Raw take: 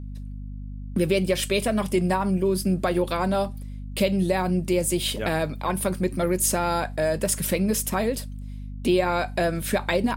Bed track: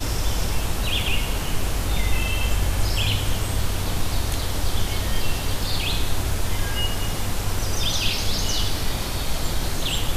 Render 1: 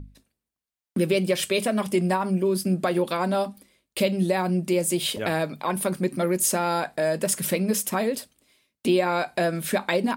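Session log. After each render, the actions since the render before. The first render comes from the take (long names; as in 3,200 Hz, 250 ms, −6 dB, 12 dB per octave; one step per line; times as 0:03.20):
mains-hum notches 50/100/150/200/250 Hz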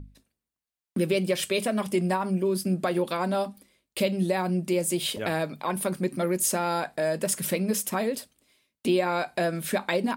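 level −2.5 dB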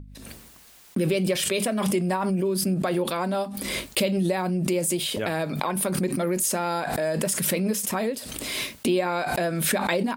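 background raised ahead of every attack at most 26 dB per second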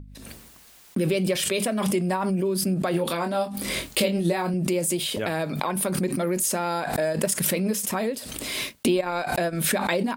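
0:02.91–0:04.54: double-tracking delay 24 ms −5.5 dB
0:06.91–0:07.48: transient designer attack +8 dB, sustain −9 dB
0:08.66–0:09.68: transient designer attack +3 dB, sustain −12 dB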